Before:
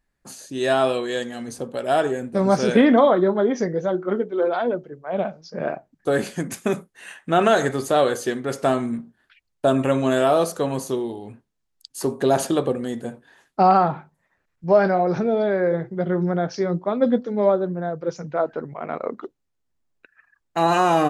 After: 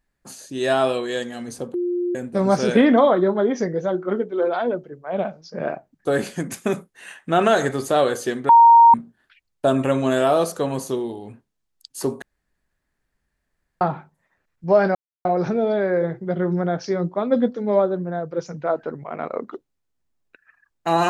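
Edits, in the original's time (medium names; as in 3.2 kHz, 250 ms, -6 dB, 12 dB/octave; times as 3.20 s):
1.74–2.15 s: bleep 353 Hz -20 dBFS
8.49–8.94 s: bleep 930 Hz -6.5 dBFS
12.22–13.81 s: room tone
14.95 s: insert silence 0.30 s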